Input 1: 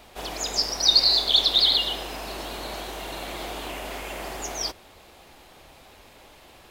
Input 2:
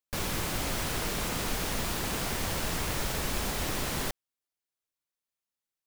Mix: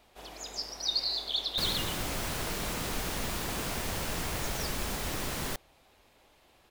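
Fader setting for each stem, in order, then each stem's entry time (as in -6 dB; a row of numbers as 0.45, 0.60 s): -12.5, -2.5 dB; 0.00, 1.45 s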